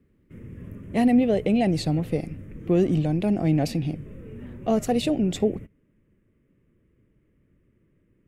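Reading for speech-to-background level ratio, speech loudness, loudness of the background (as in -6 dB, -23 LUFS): 17.5 dB, -24.0 LUFS, -41.5 LUFS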